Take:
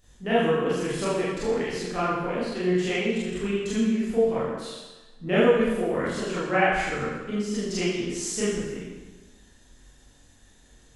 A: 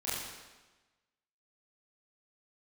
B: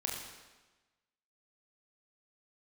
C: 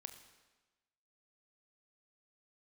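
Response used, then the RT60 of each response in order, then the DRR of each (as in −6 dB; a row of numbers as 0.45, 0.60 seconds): A; 1.2, 1.2, 1.2 seconds; −10.5, −1.5, 7.5 decibels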